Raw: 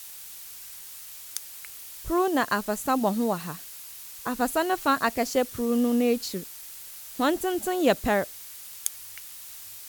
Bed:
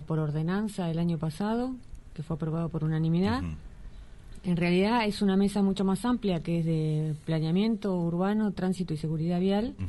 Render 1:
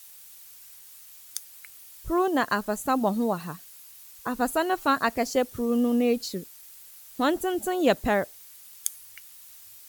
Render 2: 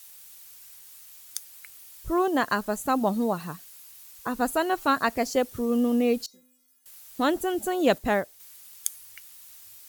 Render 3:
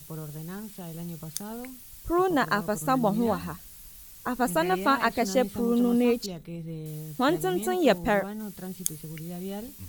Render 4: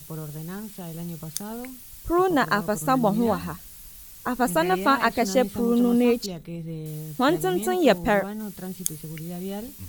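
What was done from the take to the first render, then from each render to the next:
broadband denoise 8 dB, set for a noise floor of −43 dBFS
0:06.26–0:06.86: stiff-string resonator 250 Hz, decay 0.75 s, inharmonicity 0.008; 0:07.98–0:08.40: expander for the loud parts, over −32 dBFS
mix in bed −9.5 dB
level +3 dB; brickwall limiter −2 dBFS, peak gain reduction 1 dB

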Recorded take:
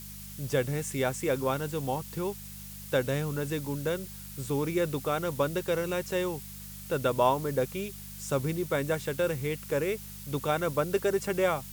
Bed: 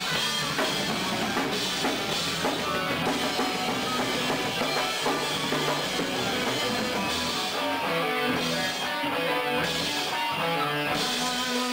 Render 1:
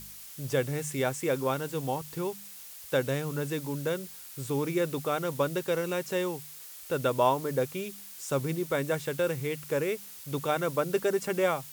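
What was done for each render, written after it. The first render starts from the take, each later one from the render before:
hum removal 50 Hz, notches 4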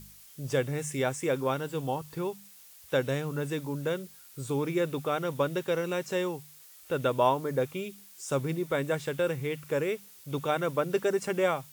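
noise reduction from a noise print 7 dB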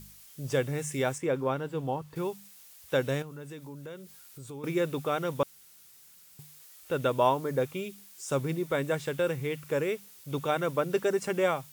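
0:01.18–0:02.16: high-shelf EQ 3,500 Hz −12 dB
0:03.22–0:04.64: downward compressor 2.5 to 1, threshold −45 dBFS
0:05.43–0:06.39: fill with room tone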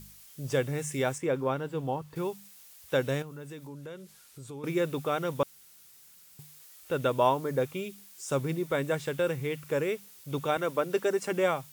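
0:03.67–0:04.67: Bessel low-pass filter 12,000 Hz
0:10.57–0:11.32: high-pass filter 210 Hz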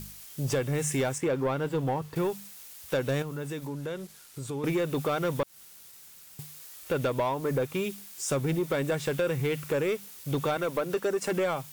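downward compressor 5 to 1, threshold −30 dBFS, peak gain reduction 11 dB
leveller curve on the samples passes 2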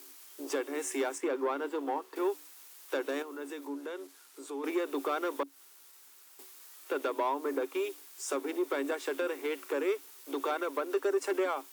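sub-octave generator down 1 octave, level −3 dB
Chebyshev high-pass with heavy ripple 270 Hz, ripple 6 dB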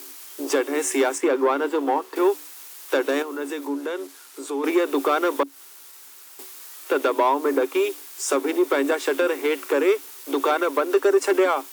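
level +11.5 dB

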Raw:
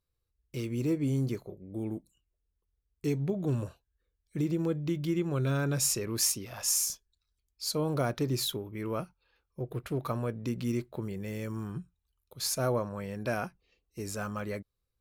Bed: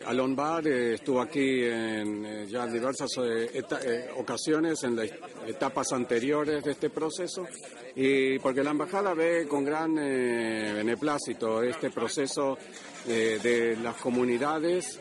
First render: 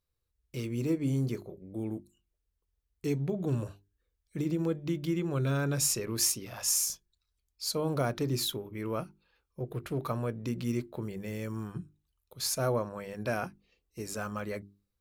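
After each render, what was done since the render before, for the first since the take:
mains-hum notches 50/100/150/200/250/300/350/400 Hz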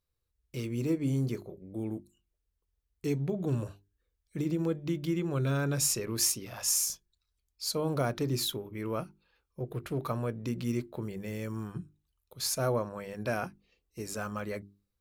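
no processing that can be heard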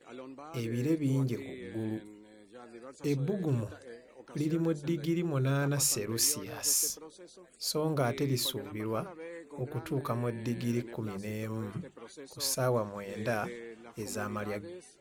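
mix in bed −18.5 dB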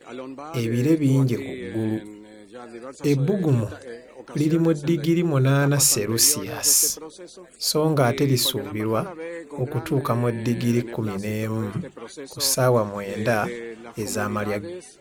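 level +10.5 dB

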